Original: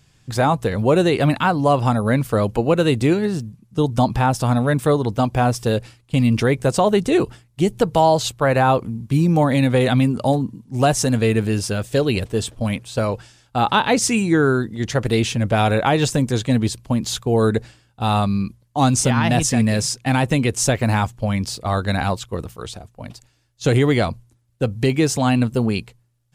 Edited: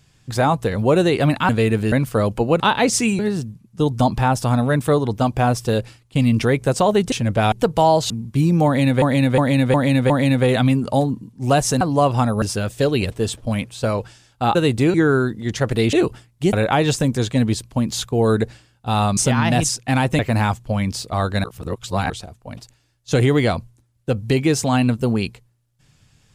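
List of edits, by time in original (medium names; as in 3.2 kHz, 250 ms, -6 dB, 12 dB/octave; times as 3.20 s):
1.49–2.10 s: swap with 11.13–11.56 s
2.78–3.17 s: swap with 13.69–14.28 s
7.10–7.70 s: swap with 15.27–15.67 s
8.28–8.86 s: delete
9.42–9.78 s: loop, 5 plays
18.31–18.96 s: delete
19.48–19.87 s: delete
20.37–20.72 s: delete
21.97–22.63 s: reverse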